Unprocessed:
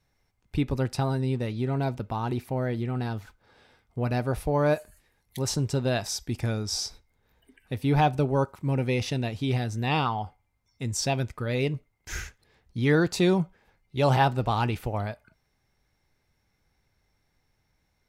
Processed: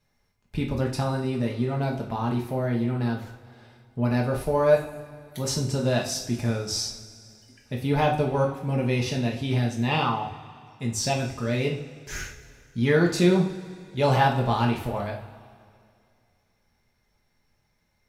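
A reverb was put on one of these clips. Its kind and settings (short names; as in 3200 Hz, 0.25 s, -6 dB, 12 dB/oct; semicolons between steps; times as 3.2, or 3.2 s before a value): two-slope reverb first 0.4 s, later 2.4 s, from -18 dB, DRR -1 dB; gain -1.5 dB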